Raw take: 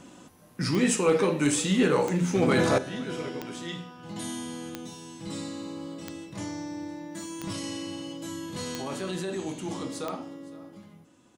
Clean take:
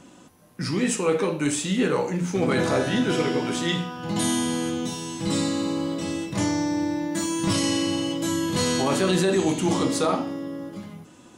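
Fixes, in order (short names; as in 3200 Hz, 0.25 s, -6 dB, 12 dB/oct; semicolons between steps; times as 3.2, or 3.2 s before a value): clip repair -13 dBFS; de-click; inverse comb 0.511 s -21 dB; gain 0 dB, from 2.78 s +11.5 dB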